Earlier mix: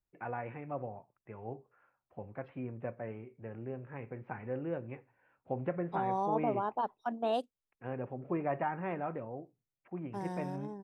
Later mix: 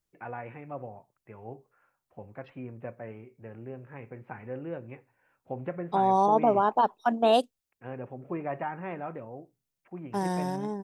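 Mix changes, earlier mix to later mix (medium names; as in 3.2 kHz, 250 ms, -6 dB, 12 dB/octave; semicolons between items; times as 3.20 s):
second voice +10.0 dB; master: add treble shelf 3.9 kHz +7.5 dB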